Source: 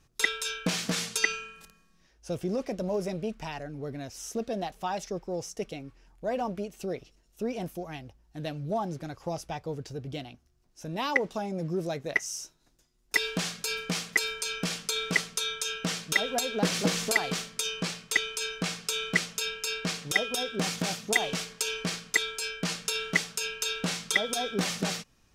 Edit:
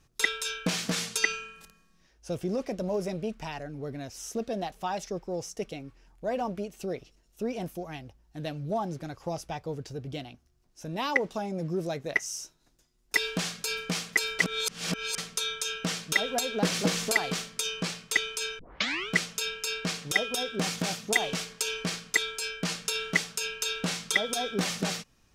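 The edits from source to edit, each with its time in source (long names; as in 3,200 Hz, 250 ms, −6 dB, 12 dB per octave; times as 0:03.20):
0:14.39–0:15.18: reverse
0:18.59: tape start 0.50 s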